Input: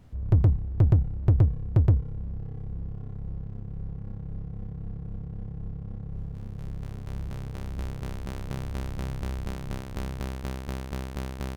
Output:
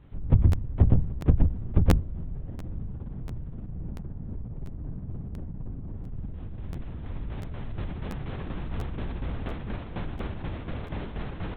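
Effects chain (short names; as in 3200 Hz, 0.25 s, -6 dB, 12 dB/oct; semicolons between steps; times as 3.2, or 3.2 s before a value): 3.69–5.96 high shelf 2600 Hz -10 dB; LPC vocoder at 8 kHz whisper; crackling interface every 0.69 s, samples 512, repeat, from 0.51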